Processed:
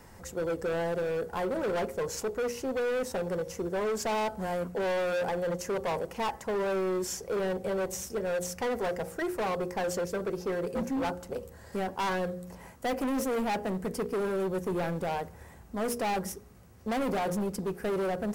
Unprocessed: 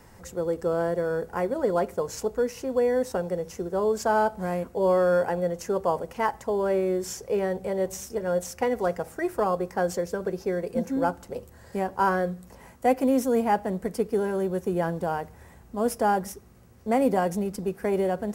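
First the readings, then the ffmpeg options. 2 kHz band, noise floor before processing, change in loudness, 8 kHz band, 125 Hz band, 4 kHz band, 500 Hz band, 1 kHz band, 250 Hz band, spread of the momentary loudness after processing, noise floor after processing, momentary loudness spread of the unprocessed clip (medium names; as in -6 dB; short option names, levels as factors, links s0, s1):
-2.0 dB, -51 dBFS, -5.0 dB, -0.5 dB, -4.0 dB, +2.5 dB, -5.5 dB, -6.0 dB, -5.0 dB, 5 LU, -51 dBFS, 8 LU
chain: -af "bandreject=f=59.67:t=h:w=4,bandreject=f=119.34:t=h:w=4,bandreject=f=179.01:t=h:w=4,bandreject=f=238.68:t=h:w=4,bandreject=f=298.35:t=h:w=4,bandreject=f=358.02:t=h:w=4,bandreject=f=417.69:t=h:w=4,bandreject=f=477.36:t=h:w=4,bandreject=f=537.03:t=h:w=4,asoftclip=type=hard:threshold=0.0422"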